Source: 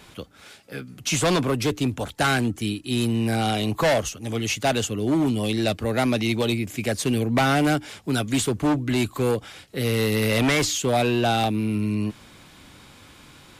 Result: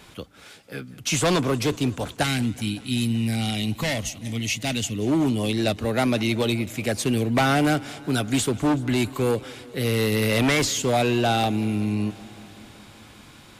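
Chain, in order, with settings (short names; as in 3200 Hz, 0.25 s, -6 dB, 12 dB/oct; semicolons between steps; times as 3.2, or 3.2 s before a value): spectral gain 2.23–4.99, 320–1800 Hz -10 dB; warbling echo 0.189 s, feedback 75%, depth 90 cents, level -21.5 dB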